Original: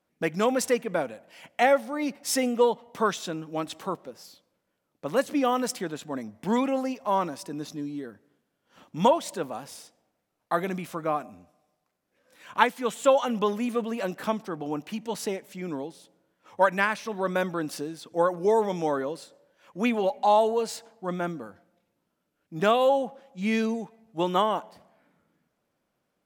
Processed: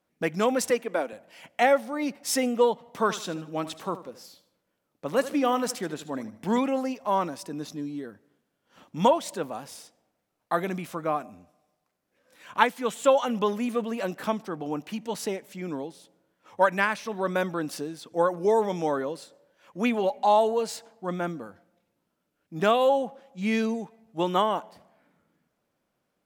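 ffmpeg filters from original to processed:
-filter_complex "[0:a]asettb=1/sr,asplit=3[s0][s1][s2];[s0]atrim=end=0.704[s3];[s1]atrim=start=0.7:end=1.13,asetpts=PTS-STARTPTS,afade=t=in:d=0.004:c=qsin,afade=t=out:st=0.426:d=0.004:c=qsin,highpass=f=240:w=0.5412,highpass=f=240:w=1.3066[s4];[s2]atrim=start=1.126[s5];[s3][s4]acrossfade=d=0.004:c1=hsin:c2=qsin[s6];[s6][s5]acrossfade=d=0.004:c1=qsin:c2=hsin,asettb=1/sr,asplit=3[s7][s8][s9];[s7]atrim=end=2.734[s10];[s8]atrim=start=2.73:end=6.59,asetpts=PTS-STARTPTS,afade=t=in:d=0.004:c=qsin,afade=t=out:st=3.856:d=0.004:c=qsin,aecho=1:1:77|154|231:0.188|0.0622|0.0205,atrim=end_sample=170226[s11];[s9]atrim=start=6.586[s12];[s10][s11]acrossfade=d=0.004:c1=hsin:c2=qsin[s13];[s13][s12]acrossfade=d=0.004:c1=qsin:c2=hsin"

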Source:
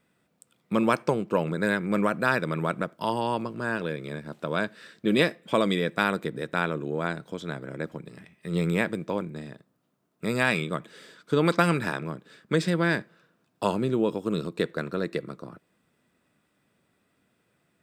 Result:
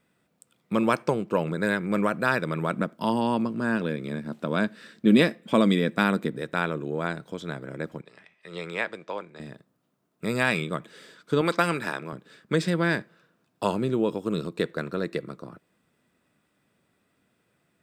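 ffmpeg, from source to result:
-filter_complex "[0:a]asettb=1/sr,asplit=3[s0][s1][s2];[s0]atrim=end=2.714[s3];[s1]atrim=start=2.71:end=6.32,asetpts=PTS-STARTPTS,afade=t=in:d=0.004:c=qsin,afade=t=out:st=3.606:d=0.004:c=qsin,equalizer=f=230:w=2.2:g=9[s4];[s2]atrim=start=6.316[s5];[s3][s4]acrossfade=d=0.004:c1=hsin:c2=qsin[s6];[s6][s5]acrossfade=d=0.004:c1=qsin:c2=hsin,asettb=1/sr,asplit=3[s7][s8][s9];[s7]atrim=end=8.014[s10];[s8]atrim=start=8.01:end=9.4,asetpts=PTS-STARTPTS,afade=t=in:d=0.004:c=qsin,afade=t=out:st=1.386:d=0.004:c=qsin,acrossover=split=470 6800:gain=0.141 1 0.112[s11][s12][s13];[s11][s12][s13]amix=inputs=3:normalize=0[s14];[s9]atrim=start=9.396[s15];[s10][s14]acrossfade=d=0.004:c1=hsin:c2=qsin[s16];[s16][s15]acrossfade=d=0.004:c1=qsin:c2=hsin,asettb=1/sr,asplit=3[s17][s18][s19];[s17]atrim=end=11.414[s20];[s18]atrim=start=11.41:end=12.13,asetpts=PTS-STARTPTS,afade=t=in:d=0.004:c=qsin,afade=t=out:st=0.716:d=0.004:c=qsin,highpass=f=300:p=1[s21];[s19]atrim=start=12.126[s22];[s20][s21]acrossfade=d=0.004:c1=hsin:c2=qsin[s23];[s23][s22]acrossfade=d=0.004:c1=qsin:c2=hsin"

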